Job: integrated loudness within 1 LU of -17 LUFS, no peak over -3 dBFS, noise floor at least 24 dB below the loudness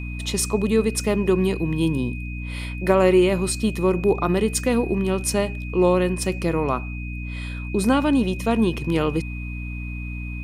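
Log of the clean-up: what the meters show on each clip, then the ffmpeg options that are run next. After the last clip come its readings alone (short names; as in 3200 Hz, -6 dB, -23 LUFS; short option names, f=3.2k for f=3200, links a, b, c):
hum 60 Hz; harmonics up to 300 Hz; hum level -28 dBFS; steady tone 2500 Hz; tone level -37 dBFS; loudness -22.5 LUFS; peak -5.5 dBFS; loudness target -17.0 LUFS
-> -af "bandreject=f=60:t=h:w=6,bandreject=f=120:t=h:w=6,bandreject=f=180:t=h:w=6,bandreject=f=240:t=h:w=6,bandreject=f=300:t=h:w=6"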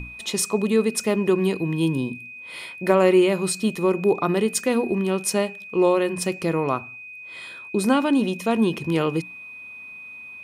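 hum none; steady tone 2500 Hz; tone level -37 dBFS
-> -af "bandreject=f=2.5k:w=30"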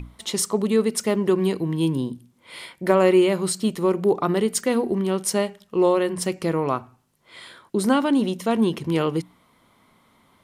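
steady tone none; loudness -22.5 LUFS; peak -4.5 dBFS; loudness target -17.0 LUFS
-> -af "volume=5.5dB,alimiter=limit=-3dB:level=0:latency=1"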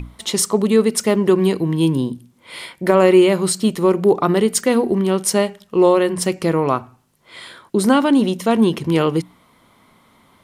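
loudness -17.0 LUFS; peak -3.0 dBFS; noise floor -56 dBFS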